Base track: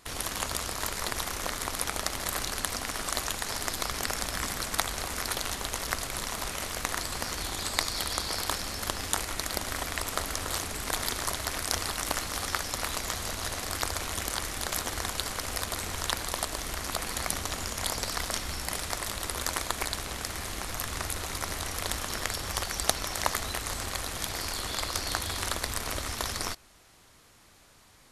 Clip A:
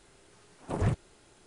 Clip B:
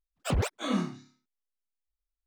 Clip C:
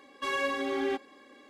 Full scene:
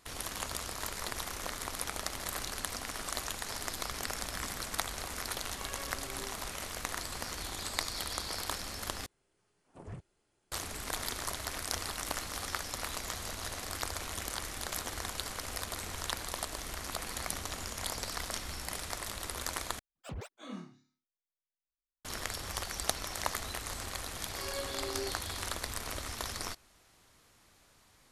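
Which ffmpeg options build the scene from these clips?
ffmpeg -i bed.wav -i cue0.wav -i cue1.wav -i cue2.wav -filter_complex "[3:a]asplit=2[link_01][link_02];[0:a]volume=-6dB[link_03];[1:a]bandreject=frequency=3800:width=17[link_04];[link_02]equalizer=frequency=470:width=2.2:gain=13[link_05];[link_03]asplit=3[link_06][link_07][link_08];[link_06]atrim=end=9.064[link_09];[link_04]atrim=end=1.46,asetpts=PTS-STARTPTS,volume=-17.5dB[link_10];[link_07]atrim=start=10.516:end=19.794[link_11];[2:a]atrim=end=2.26,asetpts=PTS-STARTPTS,volume=-15dB[link_12];[link_08]atrim=start=22.046[link_13];[link_01]atrim=end=1.49,asetpts=PTS-STARTPTS,volume=-18dB,afade=type=in:duration=0.004:curve=hsin,afade=type=out:start_time=1.486:duration=0.004:curve=hsin,adelay=5360[link_14];[link_05]atrim=end=1.49,asetpts=PTS-STARTPTS,volume=-16dB,afade=type=in:duration=0.004:curve=hsin,afade=type=out:start_time=1.486:duration=0.004:curve=hsin,adelay=24140[link_15];[link_09][link_10]acrossfade=duration=0.004:curve1=hsin:curve2=hsin[link_16];[link_16][link_11]acrossfade=duration=0.004:curve1=hsin:curve2=hsin[link_17];[link_17][link_12]acrossfade=duration=0.004:curve1=hsin:curve2=hsin[link_18];[link_18][link_13]acrossfade=duration=0.004:curve1=hsin:curve2=hsin[link_19];[link_19][link_14][link_15]amix=inputs=3:normalize=0" out.wav

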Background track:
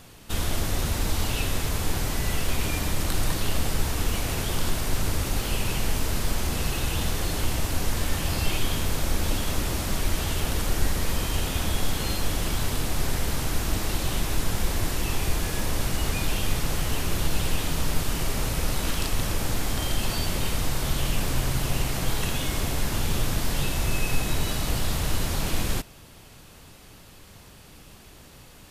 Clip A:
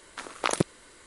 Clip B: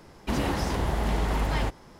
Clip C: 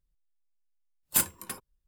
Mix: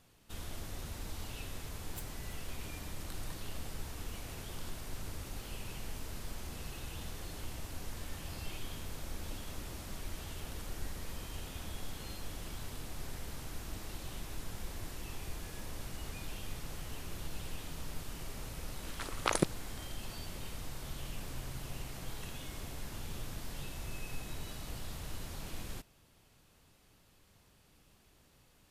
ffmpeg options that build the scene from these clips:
ffmpeg -i bed.wav -i cue0.wav -i cue1.wav -i cue2.wav -filter_complex "[0:a]volume=-17dB[link_01];[3:a]aeval=exprs='val(0)*pow(10,-21*(0.5-0.5*cos(2*PI*6.2*n/s))/20)':channel_layout=same,atrim=end=1.87,asetpts=PTS-STARTPTS,volume=-14dB,afade=type=in:duration=0.004:curve=hsin,afade=type=out:start_time=1.866:duration=0.004:curve=hsin,adelay=820[link_02];[1:a]atrim=end=1.06,asetpts=PTS-STARTPTS,volume=-4.5dB,afade=type=in:duration=0.004:curve=hsin,afade=type=out:start_time=1.056:duration=0.004:curve=hsin,adelay=18820[link_03];[link_01][link_02][link_03]amix=inputs=3:normalize=0" out.wav

